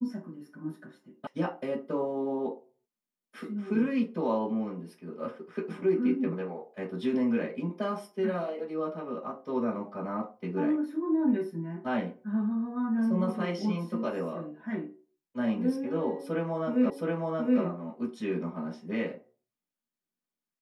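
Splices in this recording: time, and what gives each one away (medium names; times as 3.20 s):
1.27 s: sound stops dead
16.90 s: repeat of the last 0.72 s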